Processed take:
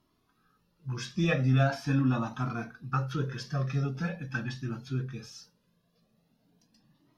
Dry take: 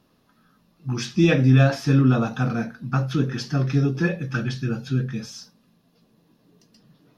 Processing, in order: dynamic EQ 1100 Hz, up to +6 dB, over -43 dBFS, Q 1.6; cascading flanger rising 0.42 Hz; gain -4.5 dB

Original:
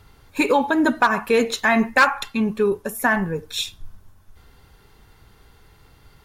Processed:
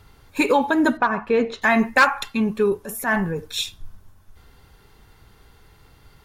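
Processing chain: 0.97–1.62 tape spacing loss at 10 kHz 26 dB; 2.81–3.48 transient shaper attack -10 dB, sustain +2 dB

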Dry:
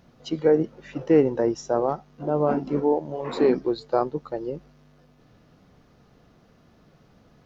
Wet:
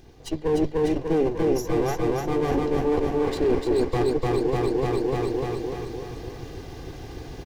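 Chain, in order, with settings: minimum comb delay 2.5 ms; on a send: feedback echo 0.298 s, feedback 57%, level -3.5 dB; on the sum: AGC gain up to 11 dB; high shelf 2000 Hz +8 dB; hard clip -7.5 dBFS, distortion -17 dB; reverse; compressor 6:1, threshold -27 dBFS, peak gain reduction 16 dB; reverse; low shelf 470 Hz +11 dB; notch 1300 Hz, Q 5.5

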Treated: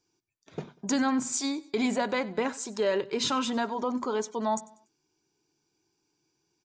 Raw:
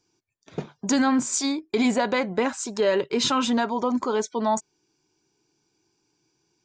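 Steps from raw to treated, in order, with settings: notches 60/120/180/240 Hz; on a send: feedback echo 96 ms, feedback 39%, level -21 dB; on the sum: gain -5 dB

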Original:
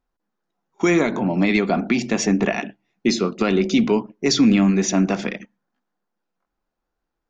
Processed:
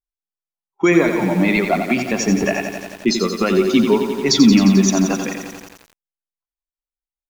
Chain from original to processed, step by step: per-bin expansion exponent 1.5; low-pass opened by the level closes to 2900 Hz, open at -16 dBFS; lo-fi delay 88 ms, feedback 80%, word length 7-bit, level -7.5 dB; gain +5 dB

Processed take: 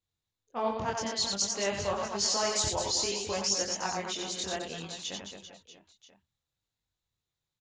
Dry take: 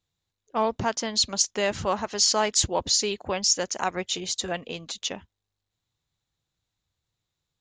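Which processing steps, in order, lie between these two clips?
reverse bouncing-ball echo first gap 90 ms, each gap 1.4×, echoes 5; chorus voices 2, 0.56 Hz, delay 23 ms, depth 3.2 ms; gain -4.5 dB

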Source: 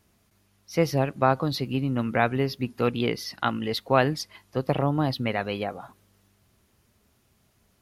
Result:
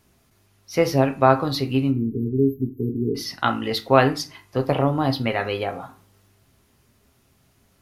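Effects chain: spectral delete 1.91–3.15, 470–12000 Hz; dynamic EQ 170 Hz, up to -6 dB, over -41 dBFS, Q 2.3; reverb RT60 0.40 s, pre-delay 7 ms, DRR 6 dB; gain +3.5 dB

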